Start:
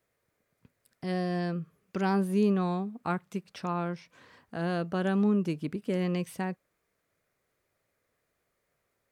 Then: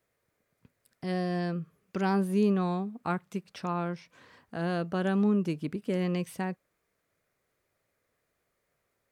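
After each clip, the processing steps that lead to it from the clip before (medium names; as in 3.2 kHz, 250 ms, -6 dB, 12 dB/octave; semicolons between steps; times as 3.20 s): no audible change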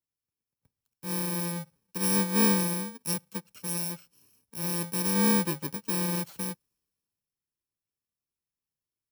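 bit-reversed sample order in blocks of 64 samples; three bands expanded up and down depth 40%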